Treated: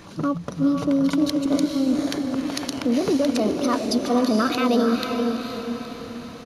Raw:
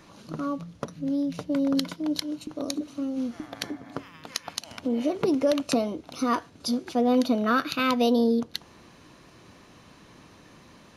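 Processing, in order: low shelf 150 Hz +3 dB; tempo 1.7×; limiter -22 dBFS, peak gain reduction 8.5 dB; on a send: diffused feedback echo 0.471 s, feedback 51%, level -4.5 dB; on the sum: gain +8 dB

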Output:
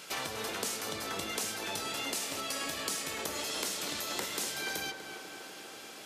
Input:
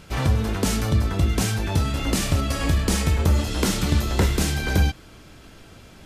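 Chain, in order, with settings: HPF 400 Hz 12 dB/oct; high shelf 2600 Hz +9.5 dB; compressor 6:1, threshold -32 dBFS, peak gain reduction 15 dB; tape echo 0.244 s, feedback 85%, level -7 dB, low-pass 2100 Hz; on a send at -20 dB: reverb RT60 0.45 s, pre-delay 3 ms; on the sum: gain -2 dB

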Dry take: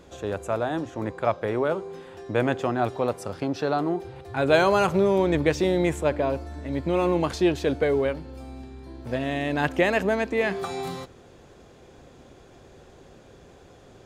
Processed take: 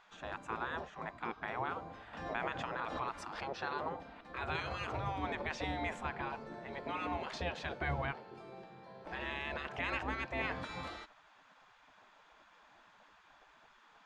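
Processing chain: limiter -15.5 dBFS, peak gain reduction 10.5 dB; tape spacing loss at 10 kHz 26 dB; spectral gate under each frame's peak -15 dB weak; 2.13–3.6 backwards sustainer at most 48 dB/s; gain +1.5 dB

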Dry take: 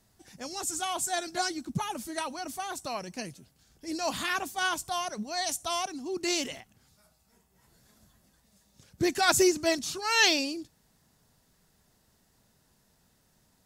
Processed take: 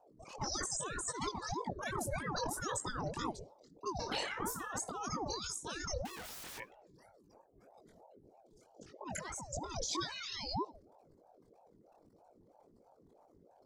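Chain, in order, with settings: formant sharpening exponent 3; limiter -22 dBFS, peak gain reduction 10.5 dB; negative-ratio compressor -38 dBFS, ratio -1; 6.05–6.58 wrapped overs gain 41 dB; chorus 1.8 Hz, delay 18 ms, depth 6 ms; 3.96–4.78 flutter echo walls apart 5.1 m, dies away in 0.24 s; reverb RT60 0.65 s, pre-delay 5 ms, DRR 18.5 dB; ring modulator with a swept carrier 480 Hz, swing 55%, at 3.1 Hz; gain +3.5 dB

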